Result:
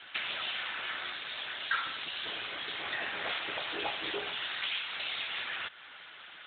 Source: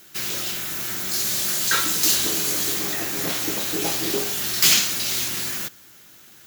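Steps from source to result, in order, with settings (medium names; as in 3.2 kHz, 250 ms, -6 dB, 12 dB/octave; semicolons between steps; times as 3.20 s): high-pass 720 Hz 12 dB/octave; compression 12:1, threshold -32 dBFS, peak gain reduction 20.5 dB; trim +9 dB; AMR-NB 12.2 kbps 8 kHz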